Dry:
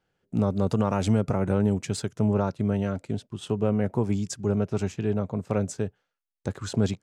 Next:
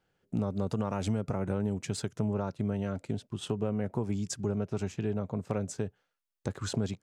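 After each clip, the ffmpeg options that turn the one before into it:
-af "acompressor=threshold=0.0316:ratio=2.5"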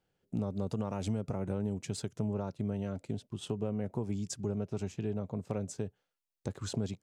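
-af "equalizer=f=1500:t=o:w=1.2:g=-5,volume=0.708"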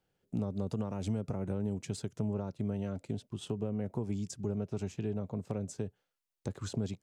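-filter_complex "[0:a]acrossover=split=450[s0][s1];[s1]acompressor=threshold=0.00794:ratio=6[s2];[s0][s2]amix=inputs=2:normalize=0"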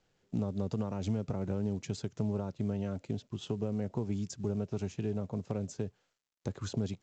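-af "volume=1.12" -ar 16000 -c:a pcm_mulaw

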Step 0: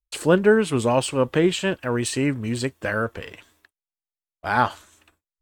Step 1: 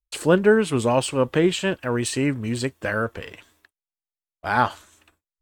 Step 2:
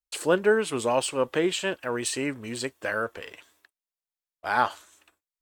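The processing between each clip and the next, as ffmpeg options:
-af anull
-af "bass=f=250:g=-12,treble=f=4000:g=2,volume=0.708"

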